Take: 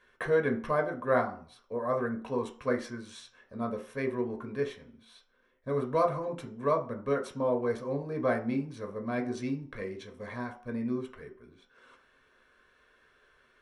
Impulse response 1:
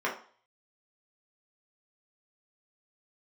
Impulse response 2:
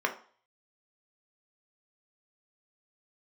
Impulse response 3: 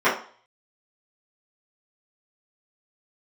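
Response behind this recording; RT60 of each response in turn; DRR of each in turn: 2; 0.45, 0.45, 0.45 seconds; −4.5, 3.0, −14.5 decibels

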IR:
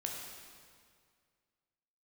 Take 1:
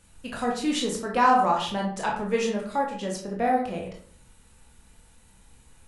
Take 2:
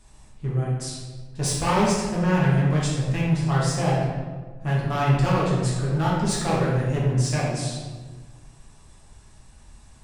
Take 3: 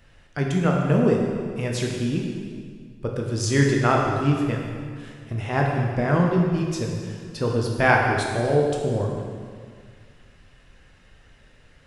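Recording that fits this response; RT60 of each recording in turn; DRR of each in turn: 3; 0.50, 1.4, 2.0 seconds; −1.5, −6.5, −1.0 decibels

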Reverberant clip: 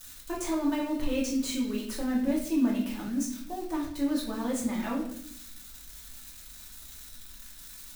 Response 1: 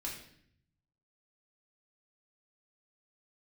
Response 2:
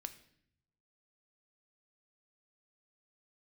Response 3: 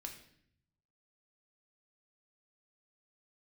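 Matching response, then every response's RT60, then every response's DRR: 1; 0.65, 0.65, 0.65 seconds; −4.0, 8.5, 2.0 decibels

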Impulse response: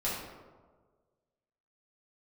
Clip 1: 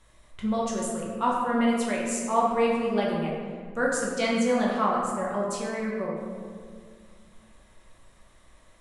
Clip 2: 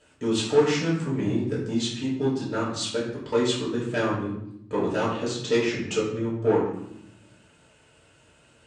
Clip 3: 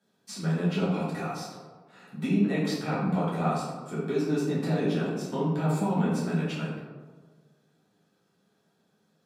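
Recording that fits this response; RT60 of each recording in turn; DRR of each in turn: 3; 2.1, 0.80, 1.5 seconds; −4.5, −7.5, −8.5 decibels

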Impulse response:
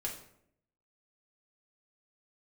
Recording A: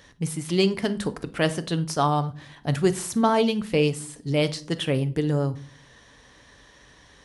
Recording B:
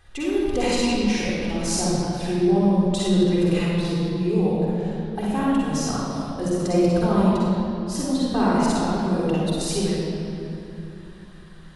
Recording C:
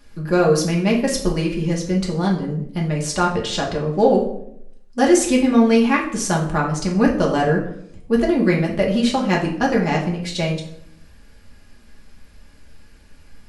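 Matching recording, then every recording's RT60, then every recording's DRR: C; non-exponential decay, 2.9 s, 0.70 s; 10.0, −6.5, −3.0 decibels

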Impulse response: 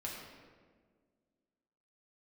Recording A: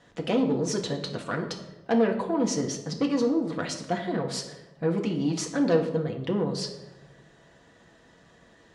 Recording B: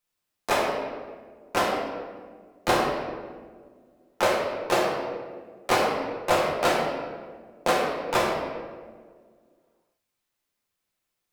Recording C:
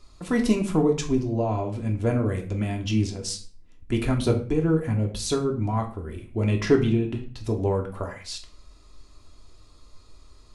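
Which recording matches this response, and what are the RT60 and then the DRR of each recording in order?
B; 1.1, 1.7, 0.45 seconds; 1.5, −4.5, 1.5 decibels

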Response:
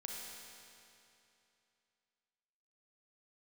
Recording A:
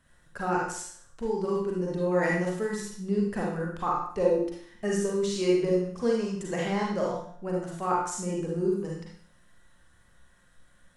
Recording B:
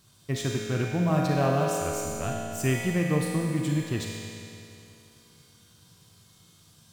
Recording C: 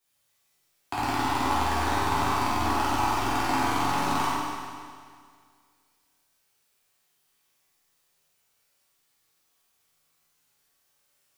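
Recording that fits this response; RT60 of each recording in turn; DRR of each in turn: B; 0.55, 2.8, 2.0 seconds; −3.5, −1.5, −10.5 decibels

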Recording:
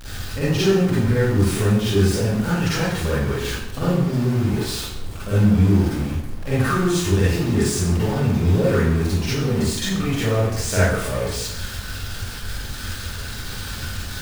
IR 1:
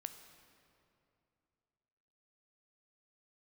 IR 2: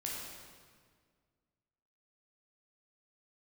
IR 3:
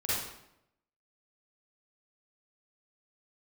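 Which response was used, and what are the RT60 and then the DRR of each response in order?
3; 2.7, 1.8, 0.80 seconds; 8.0, −4.0, −10.5 decibels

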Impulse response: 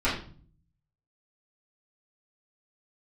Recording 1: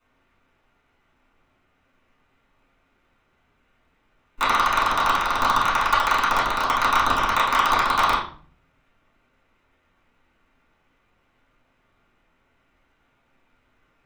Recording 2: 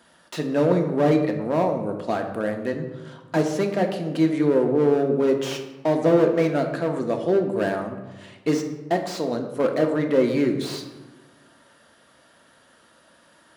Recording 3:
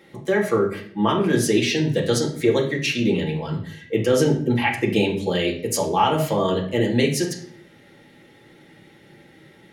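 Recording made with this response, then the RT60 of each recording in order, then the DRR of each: 1; 0.45, 1.2, 0.60 seconds; −12.0, 3.5, −2.5 decibels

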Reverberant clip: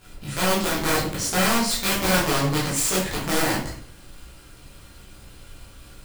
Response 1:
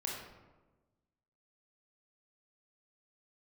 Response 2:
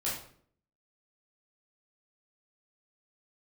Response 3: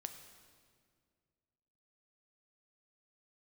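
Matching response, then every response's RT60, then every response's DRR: 2; 1.2, 0.55, 2.0 seconds; −2.5, −8.0, 6.5 decibels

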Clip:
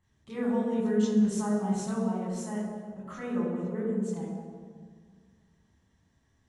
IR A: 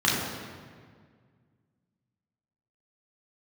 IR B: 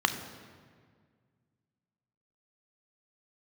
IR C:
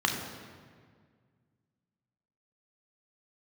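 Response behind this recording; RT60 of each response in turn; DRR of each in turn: A; 1.8, 1.8, 1.8 seconds; −6.0, 7.5, 1.5 decibels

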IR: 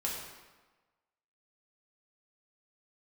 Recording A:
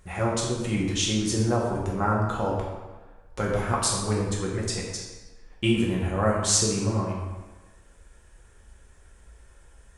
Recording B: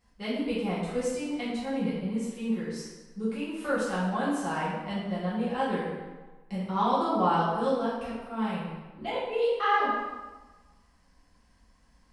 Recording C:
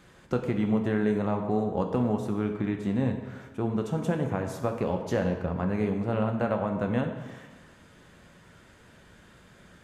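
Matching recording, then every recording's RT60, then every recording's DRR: A; 1.3, 1.3, 1.3 seconds; −4.0, −11.0, 3.5 decibels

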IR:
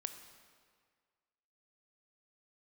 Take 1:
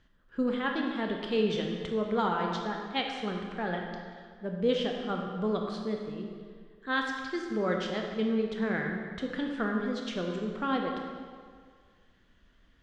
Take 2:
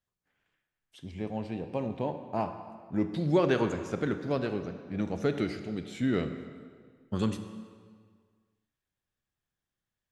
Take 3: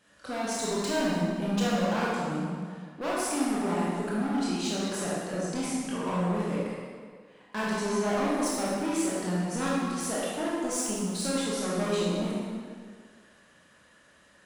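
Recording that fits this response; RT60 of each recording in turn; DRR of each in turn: 2; 1.8, 1.8, 1.8 seconds; 1.0, 8.0, −7.5 decibels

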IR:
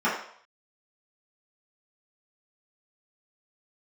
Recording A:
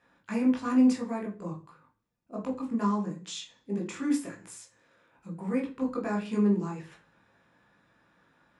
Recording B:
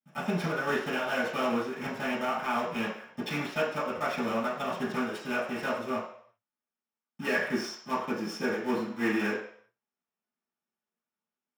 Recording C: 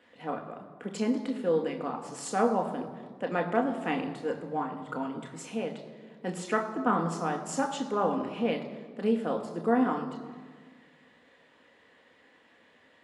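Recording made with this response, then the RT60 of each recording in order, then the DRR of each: B; 0.40, 0.60, 1.6 seconds; −2.0, −10.5, 3.0 decibels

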